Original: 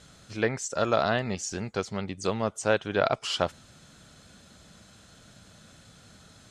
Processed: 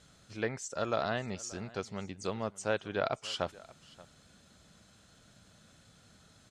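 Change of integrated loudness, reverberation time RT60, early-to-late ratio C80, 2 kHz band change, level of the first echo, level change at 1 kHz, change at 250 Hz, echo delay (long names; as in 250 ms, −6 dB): −7.5 dB, no reverb audible, no reverb audible, −7.5 dB, −21.0 dB, −7.5 dB, −7.5 dB, 580 ms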